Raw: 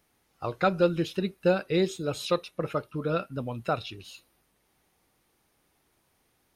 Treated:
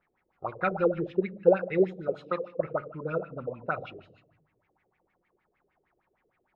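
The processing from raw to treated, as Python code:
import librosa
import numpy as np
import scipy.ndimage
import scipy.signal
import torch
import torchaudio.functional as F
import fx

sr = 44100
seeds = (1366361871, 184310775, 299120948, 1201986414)

y = fx.highpass(x, sr, hz=160.0, slope=24, at=(2.08, 2.5))
y = fx.room_shoebox(y, sr, seeds[0], volume_m3=2700.0, walls='furnished', distance_m=0.99)
y = fx.filter_lfo_lowpass(y, sr, shape='sine', hz=6.5, low_hz=410.0, high_hz=2300.0, q=6.1)
y = F.gain(torch.from_numpy(y), -8.0).numpy()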